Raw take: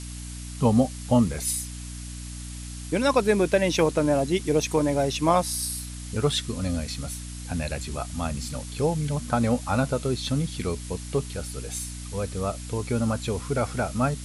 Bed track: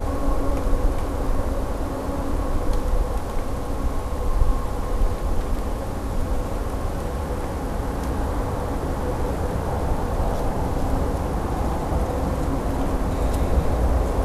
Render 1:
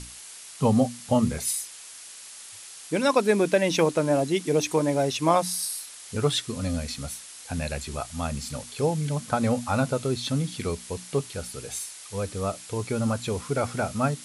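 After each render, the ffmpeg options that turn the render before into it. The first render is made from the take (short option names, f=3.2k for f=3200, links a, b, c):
-af "bandreject=f=60:t=h:w=6,bandreject=f=120:t=h:w=6,bandreject=f=180:t=h:w=6,bandreject=f=240:t=h:w=6,bandreject=f=300:t=h:w=6"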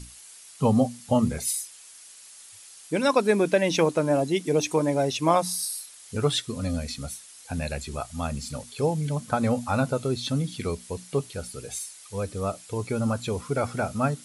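-af "afftdn=nr=7:nf=-44"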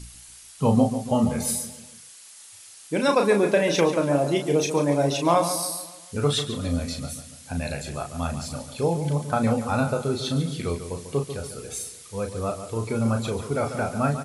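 -filter_complex "[0:a]asplit=2[a][b];[b]adelay=35,volume=-6dB[c];[a][c]amix=inputs=2:normalize=0,asplit=2[d][e];[e]adelay=143,lowpass=f=4.3k:p=1,volume=-10dB,asplit=2[f][g];[g]adelay=143,lowpass=f=4.3k:p=1,volume=0.48,asplit=2[h][i];[i]adelay=143,lowpass=f=4.3k:p=1,volume=0.48,asplit=2[j][k];[k]adelay=143,lowpass=f=4.3k:p=1,volume=0.48,asplit=2[l][m];[m]adelay=143,lowpass=f=4.3k:p=1,volume=0.48[n];[f][h][j][l][n]amix=inputs=5:normalize=0[o];[d][o]amix=inputs=2:normalize=0"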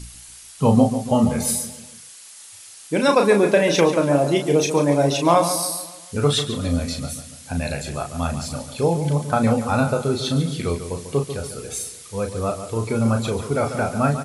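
-af "volume=4dB"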